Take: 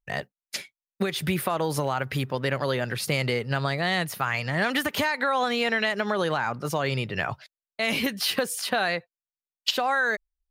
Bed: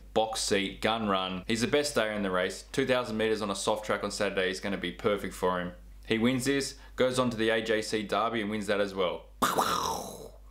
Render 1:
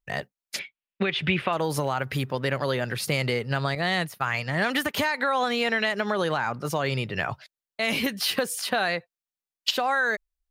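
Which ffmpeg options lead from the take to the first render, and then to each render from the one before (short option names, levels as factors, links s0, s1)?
-filter_complex "[0:a]asettb=1/sr,asplit=3[s0][s1][s2];[s0]atrim=end=0.594[s3];[s1]atrim=start=0.59:end=1.53,asetpts=PTS-STARTPTS,afade=t=in:d=0.004:c=qsin,afade=t=out:st=0.936:d=0.004:c=qsin,lowpass=f=2800:t=q:w=2.6[s4];[s2]atrim=start=1.526[s5];[s3][s4]acrossfade=d=0.004:c1=hsin:c2=qsin[s6];[s6][s5]acrossfade=d=0.004:c1=qsin:c2=hsin,asettb=1/sr,asplit=3[s7][s8][s9];[s7]atrim=end=3.754[s10];[s8]atrim=start=3.75:end=4.94,asetpts=PTS-STARTPTS,afade=t=in:d=0.004:c=qsin,afade=t=out:st=1.186:d=0.004:c=qsin,agate=range=0.0224:threshold=0.0316:ratio=3:release=100:detection=peak[s11];[s9]atrim=start=4.936[s12];[s10][s11]acrossfade=d=0.004:c1=hsin:c2=qsin[s13];[s13][s12]acrossfade=d=0.004:c1=qsin:c2=hsin"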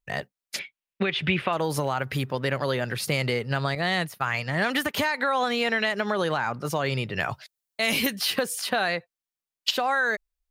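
-filter_complex "[0:a]asettb=1/sr,asplit=3[s0][s1][s2];[s0]atrim=end=7.204[s3];[s1]atrim=start=7.2:end=8.16,asetpts=PTS-STARTPTS,afade=t=in:d=0.004:c=qsin,afade=t=out:st=0.956:d=0.004:c=qsin,highshelf=f=4900:g=9[s4];[s2]atrim=start=8.156[s5];[s3][s4]acrossfade=d=0.004:c1=hsin:c2=qsin[s6];[s6][s5]acrossfade=d=0.004:c1=qsin:c2=hsin"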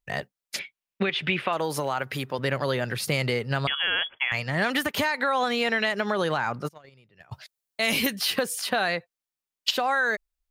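-filter_complex "[0:a]asettb=1/sr,asplit=3[s0][s1][s2];[s0]atrim=end=1.094[s3];[s1]atrim=start=1.09:end=2.39,asetpts=PTS-STARTPTS,afade=t=in:d=0.004:c=qsin,afade=t=out:st=1.296:d=0.004:c=qsin,highpass=f=250:p=1[s4];[s2]atrim=start=2.386[s5];[s3][s4]acrossfade=d=0.004:c1=hsin:c2=qsin[s6];[s6][s5]acrossfade=d=0.004:c1=qsin:c2=hsin,asettb=1/sr,asplit=3[s7][s8][s9];[s7]atrim=end=3.674[s10];[s8]atrim=start=3.67:end=4.32,asetpts=PTS-STARTPTS,afade=t=in:d=0.004:c=qsin,afade=t=out:st=0.646:d=0.004:c=qsin,lowpass=f=3000:t=q:w=0.5098,lowpass=f=3000:t=q:w=0.6013,lowpass=f=3000:t=q:w=0.9,lowpass=f=3000:t=q:w=2.563,afreqshift=-3500[s11];[s9]atrim=start=4.316[s12];[s10][s11]acrossfade=d=0.004:c1=hsin:c2=qsin[s13];[s13][s12]acrossfade=d=0.004:c1=qsin:c2=hsin,asplit=3[s14][s15][s16];[s14]afade=t=out:st=6.67:d=0.02[s17];[s15]agate=range=0.0355:threshold=0.0708:ratio=16:release=100:detection=peak,afade=t=in:st=6.67:d=0.02,afade=t=out:st=7.31:d=0.02[s18];[s16]afade=t=in:st=7.31:d=0.02[s19];[s17][s18][s19]amix=inputs=3:normalize=0"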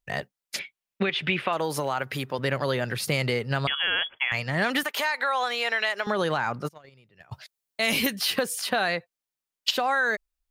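-filter_complex "[0:a]asettb=1/sr,asplit=3[s0][s1][s2];[s0]atrim=end=4.834[s3];[s1]atrim=start=4.83:end=6.07,asetpts=PTS-STARTPTS,afade=t=in:d=0.004:c=qsin,afade=t=out:st=1.236:d=0.004:c=qsin,highpass=610[s4];[s2]atrim=start=6.066[s5];[s3][s4]acrossfade=d=0.004:c1=hsin:c2=qsin[s6];[s6][s5]acrossfade=d=0.004:c1=qsin:c2=hsin"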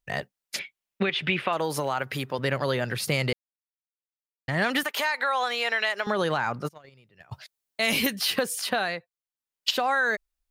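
-filter_complex "[0:a]asplit=5[s0][s1][s2][s3][s4];[s0]atrim=end=3.33,asetpts=PTS-STARTPTS,afade=t=out:st=3.326:d=0.004:c=hsin[s5];[s1]atrim=start=3.33:end=4.48,asetpts=PTS-STARTPTS,volume=0[s6];[s2]atrim=start=4.48:end=9.08,asetpts=PTS-STARTPTS,afade=t=in:d=0.004:c=hsin,afade=t=out:st=4.21:d=0.39:silence=0.354813[s7];[s3]atrim=start=9.08:end=9.33,asetpts=PTS-STARTPTS,volume=0.355[s8];[s4]atrim=start=9.33,asetpts=PTS-STARTPTS,afade=t=in:d=0.39:silence=0.354813[s9];[s5][s6][s7][s8][s9]concat=n=5:v=0:a=1"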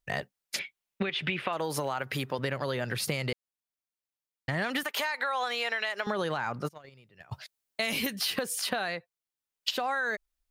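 -af "acompressor=threshold=0.0447:ratio=6"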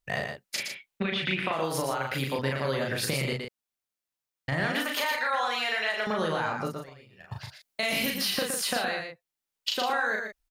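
-filter_complex "[0:a]asplit=2[s0][s1];[s1]adelay=37,volume=0.708[s2];[s0][s2]amix=inputs=2:normalize=0,aecho=1:1:117:0.531"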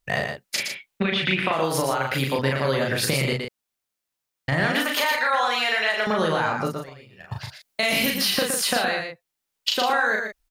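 -af "volume=2"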